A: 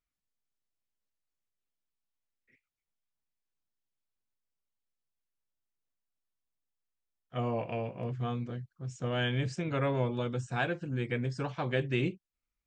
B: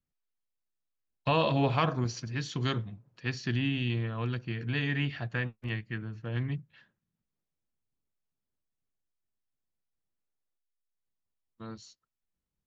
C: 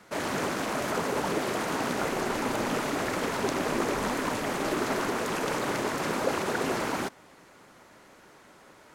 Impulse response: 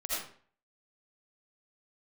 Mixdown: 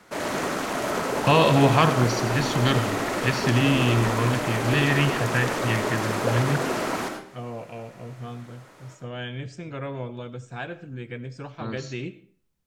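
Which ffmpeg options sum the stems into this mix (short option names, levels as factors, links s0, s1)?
-filter_complex "[0:a]volume=0.668,asplit=2[s0][s1];[s1]volume=0.126[s2];[1:a]acontrast=39,volume=1.26,asplit=2[s3][s4];[s4]volume=0.168[s5];[2:a]volume=0.841,asplit=2[s6][s7];[s7]volume=0.562[s8];[3:a]atrim=start_sample=2205[s9];[s2][s5][s8]amix=inputs=3:normalize=0[s10];[s10][s9]afir=irnorm=-1:irlink=0[s11];[s0][s3][s6][s11]amix=inputs=4:normalize=0"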